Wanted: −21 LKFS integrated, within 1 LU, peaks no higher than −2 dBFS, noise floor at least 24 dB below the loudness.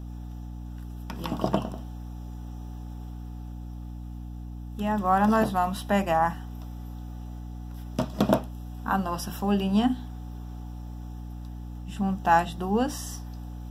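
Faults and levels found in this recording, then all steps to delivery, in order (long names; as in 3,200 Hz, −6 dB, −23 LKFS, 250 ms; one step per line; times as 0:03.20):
mains hum 60 Hz; hum harmonics up to 300 Hz; level of the hum −35 dBFS; integrated loudness −27.0 LKFS; sample peak −4.5 dBFS; target loudness −21.0 LKFS
→ mains-hum notches 60/120/180/240/300 Hz
level +6 dB
brickwall limiter −2 dBFS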